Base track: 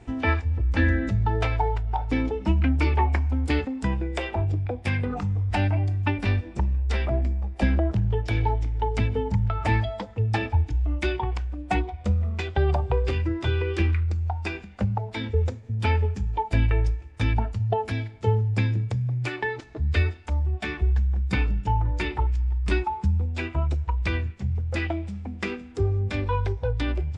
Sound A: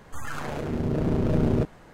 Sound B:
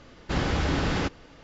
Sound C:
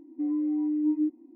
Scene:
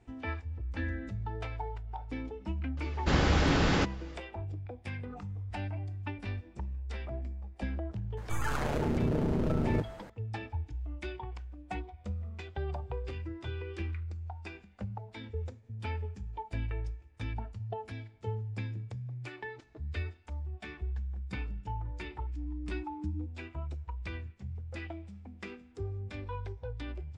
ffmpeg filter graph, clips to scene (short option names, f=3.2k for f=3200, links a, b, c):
-filter_complex "[0:a]volume=-14dB[a];[1:a]acompressor=threshold=-24dB:ratio=6:attack=3.2:release=140:knee=1:detection=peak[b];[2:a]atrim=end=1.43,asetpts=PTS-STARTPTS,afade=t=in:d=0.004:c=hsin,afade=t=out:st=1.426:d=0.004:c=hsin,adelay=2770[c];[b]atrim=end=1.93,asetpts=PTS-STARTPTS,volume=-0.5dB,afade=t=in:d=0.004:c=hsin,afade=t=out:st=1.926:d=0.004:c=hsin,adelay=8170[d];[3:a]atrim=end=1.35,asetpts=PTS-STARTPTS,volume=-16.5dB,afade=t=in:d=0.004:c=hsin,afade=t=out:st=1.346:d=0.004:c=hsin,adelay=22170[e];[a][c][d][e]amix=inputs=4:normalize=0"